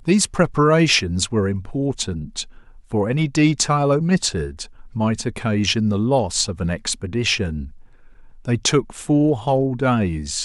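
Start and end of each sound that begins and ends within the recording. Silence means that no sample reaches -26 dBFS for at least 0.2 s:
2.92–4.64
4.96–7.65

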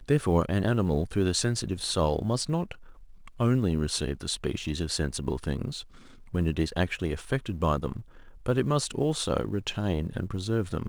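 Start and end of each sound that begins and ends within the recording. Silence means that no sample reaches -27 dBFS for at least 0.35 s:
3.4–5.71
6.35–7.97

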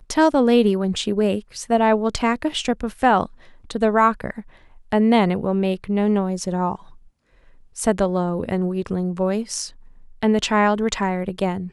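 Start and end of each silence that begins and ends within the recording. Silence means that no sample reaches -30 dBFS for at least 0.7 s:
6.75–7.78

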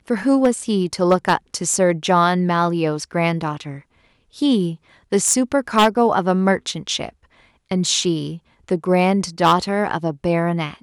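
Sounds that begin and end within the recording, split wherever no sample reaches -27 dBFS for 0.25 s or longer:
4.39–4.74
5.12–7.09
7.71–8.35

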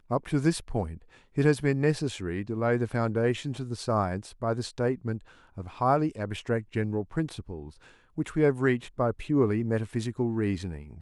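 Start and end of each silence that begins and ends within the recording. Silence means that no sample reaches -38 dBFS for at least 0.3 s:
0.97–1.37
5.18–5.57
7.69–8.18

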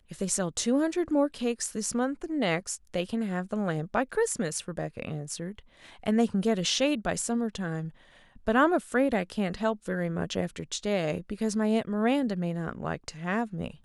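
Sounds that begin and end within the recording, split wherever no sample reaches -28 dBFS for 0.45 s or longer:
6.07–7.81

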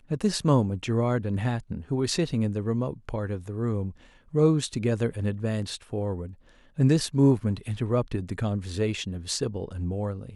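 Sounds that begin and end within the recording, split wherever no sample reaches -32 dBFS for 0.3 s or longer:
4.34–6.27

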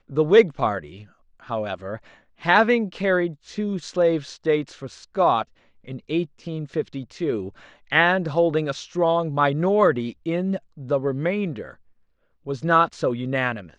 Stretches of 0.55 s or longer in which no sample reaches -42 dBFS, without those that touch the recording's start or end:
11.74–12.46

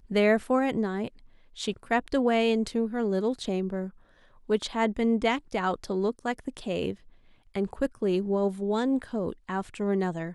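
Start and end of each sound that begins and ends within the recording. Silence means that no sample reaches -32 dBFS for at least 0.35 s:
1.6–3.87
4.5–6.92

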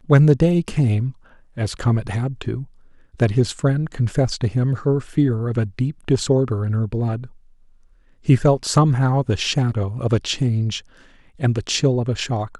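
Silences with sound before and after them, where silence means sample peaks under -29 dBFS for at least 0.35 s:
1.11–1.57
2.64–3.2
7.26–8.28
10.79–11.41

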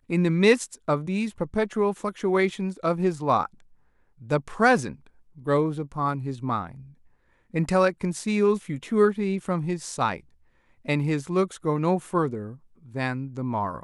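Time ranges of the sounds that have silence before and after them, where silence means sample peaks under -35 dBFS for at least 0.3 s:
4.3–4.93
5.47–6.71
7.54–10.18
10.88–12.52

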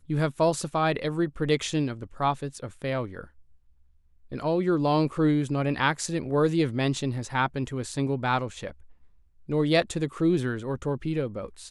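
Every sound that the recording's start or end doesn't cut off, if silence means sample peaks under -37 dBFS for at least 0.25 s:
4.32–8.71

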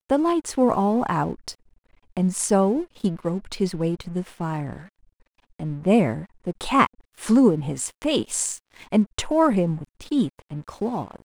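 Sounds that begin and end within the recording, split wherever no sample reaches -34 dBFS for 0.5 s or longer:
2.17–4.83

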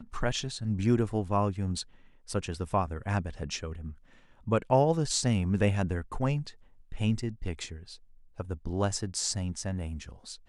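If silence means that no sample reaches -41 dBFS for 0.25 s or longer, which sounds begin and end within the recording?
2.29–3.92
4.47–6.51
6.92–7.96

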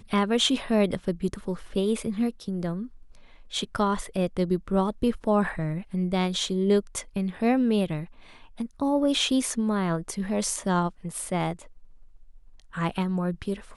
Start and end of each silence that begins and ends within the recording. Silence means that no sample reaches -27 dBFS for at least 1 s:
11.53–12.77

